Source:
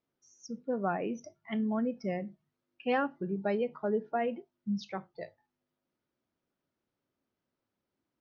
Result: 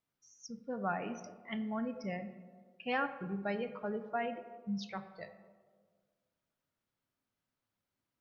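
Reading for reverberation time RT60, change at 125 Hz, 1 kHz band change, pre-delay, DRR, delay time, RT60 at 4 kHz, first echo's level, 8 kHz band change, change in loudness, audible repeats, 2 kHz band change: 1.6 s, -4.0 dB, -2.5 dB, 4 ms, 9.5 dB, none, 0.75 s, none, n/a, -5.0 dB, none, -0.5 dB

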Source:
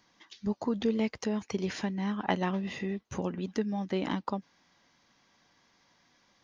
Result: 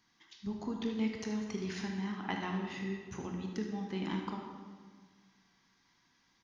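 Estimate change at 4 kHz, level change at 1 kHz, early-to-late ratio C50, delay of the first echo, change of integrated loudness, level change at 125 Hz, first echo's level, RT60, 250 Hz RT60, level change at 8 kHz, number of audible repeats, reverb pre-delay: -4.0 dB, -6.5 dB, 2.5 dB, 75 ms, -5.5 dB, -4.5 dB, -10.5 dB, 1.7 s, 1.9 s, n/a, 1, 20 ms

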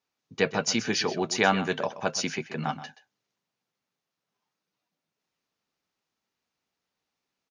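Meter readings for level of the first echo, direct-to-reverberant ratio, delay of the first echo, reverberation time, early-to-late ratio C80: -14.0 dB, none, 0.127 s, none, none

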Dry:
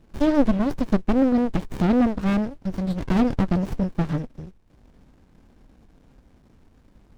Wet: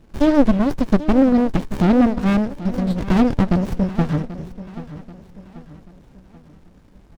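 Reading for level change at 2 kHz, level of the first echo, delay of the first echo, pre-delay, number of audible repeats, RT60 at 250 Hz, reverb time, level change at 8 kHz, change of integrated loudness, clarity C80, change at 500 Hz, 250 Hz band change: +4.5 dB, -15.0 dB, 0.785 s, none, 3, none, none, n/a, +4.5 dB, none, +4.5 dB, +4.5 dB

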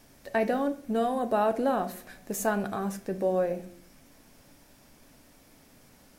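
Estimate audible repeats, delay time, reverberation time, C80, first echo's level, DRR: none, none, 0.55 s, 19.0 dB, none, 9.0 dB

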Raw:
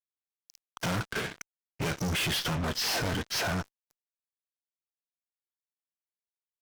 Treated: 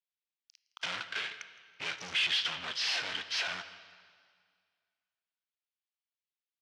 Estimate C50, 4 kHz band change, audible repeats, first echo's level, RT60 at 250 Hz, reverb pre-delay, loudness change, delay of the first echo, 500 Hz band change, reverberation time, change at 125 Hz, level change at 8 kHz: 11.5 dB, +1.0 dB, 1, -19.0 dB, 2.0 s, 21 ms, -2.0 dB, 0.163 s, -13.5 dB, 2.0 s, -25.0 dB, -8.5 dB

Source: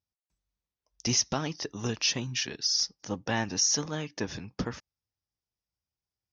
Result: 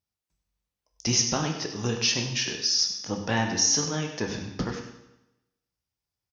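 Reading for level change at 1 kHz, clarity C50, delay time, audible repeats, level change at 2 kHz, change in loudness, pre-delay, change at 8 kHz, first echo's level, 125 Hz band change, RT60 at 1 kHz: +4.0 dB, 6.0 dB, 98 ms, 1, +4.0 dB, +3.5 dB, 15 ms, +3.5 dB, -11.0 dB, +4.5 dB, 0.95 s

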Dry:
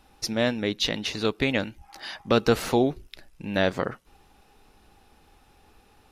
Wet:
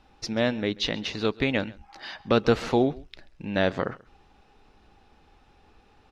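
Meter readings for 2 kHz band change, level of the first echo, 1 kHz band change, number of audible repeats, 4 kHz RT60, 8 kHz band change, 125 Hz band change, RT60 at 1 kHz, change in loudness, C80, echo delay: -1.0 dB, -22.5 dB, -0.5 dB, 1, none, n/a, 0.0 dB, none, -0.5 dB, none, 0.135 s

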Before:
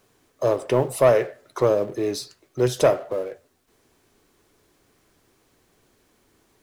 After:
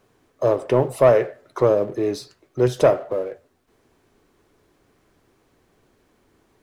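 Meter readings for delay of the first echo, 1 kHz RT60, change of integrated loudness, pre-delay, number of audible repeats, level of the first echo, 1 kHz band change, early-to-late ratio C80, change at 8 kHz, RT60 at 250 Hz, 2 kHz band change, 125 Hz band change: none, none, +2.0 dB, none, none, none, +1.5 dB, none, -5.5 dB, none, 0.0 dB, +2.5 dB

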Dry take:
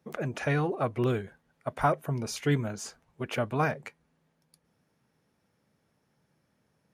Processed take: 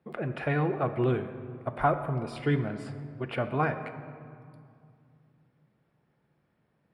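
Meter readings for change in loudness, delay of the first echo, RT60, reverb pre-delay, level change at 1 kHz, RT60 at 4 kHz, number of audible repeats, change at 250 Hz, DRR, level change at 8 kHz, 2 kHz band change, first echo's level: 0.0 dB, none, 2.3 s, 3 ms, +1.0 dB, 1.3 s, none, +1.0 dB, 8.0 dB, under -15 dB, -0.5 dB, none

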